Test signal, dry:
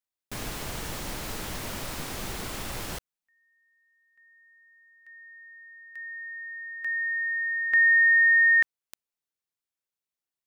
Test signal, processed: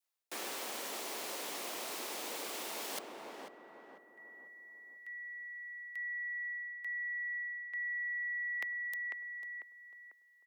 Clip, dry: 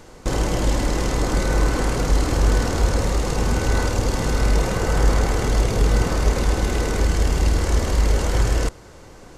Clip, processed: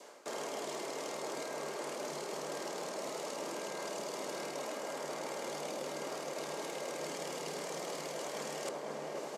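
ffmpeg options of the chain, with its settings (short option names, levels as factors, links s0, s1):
-filter_complex "[0:a]highpass=280,asplit=2[s0][s1];[s1]adelay=496,lowpass=f=1200:p=1,volume=0.316,asplit=2[s2][s3];[s3]adelay=496,lowpass=f=1200:p=1,volume=0.45,asplit=2[s4][s5];[s5]adelay=496,lowpass=f=1200:p=1,volume=0.45,asplit=2[s6][s7];[s7]adelay=496,lowpass=f=1200:p=1,volume=0.45,asplit=2[s8][s9];[s9]adelay=496,lowpass=f=1200:p=1,volume=0.45[s10];[s0][s2][s4][s6][s8][s10]amix=inputs=6:normalize=0,areverse,acompressor=threshold=0.0112:ratio=10:attack=4.8:release=752:detection=peak,areverse,adynamicequalizer=threshold=0.001:dfrequency=1400:dqfactor=2:tfrequency=1400:tqfactor=2:attack=5:release=100:ratio=0.375:range=2.5:mode=cutabove:tftype=bell,afreqshift=100,volume=1.58"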